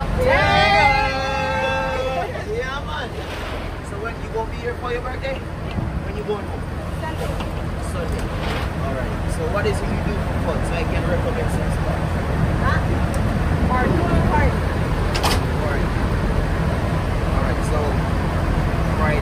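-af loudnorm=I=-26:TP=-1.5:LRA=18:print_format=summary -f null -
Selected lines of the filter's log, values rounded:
Input Integrated:    -21.4 LUFS
Input True Peak:      -4.0 dBTP
Input LRA:             6.4 LU
Input Threshold:     -31.4 LUFS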